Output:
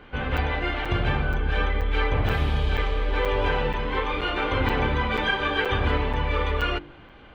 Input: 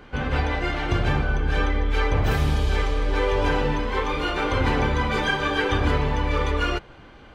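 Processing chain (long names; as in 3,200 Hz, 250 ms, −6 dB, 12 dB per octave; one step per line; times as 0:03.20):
high shelf with overshoot 4,400 Hz −9.5 dB, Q 1.5
hum removal 48.96 Hz, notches 8
regular buffer underruns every 0.48 s, samples 256, zero, from 0:00.37
level −1.5 dB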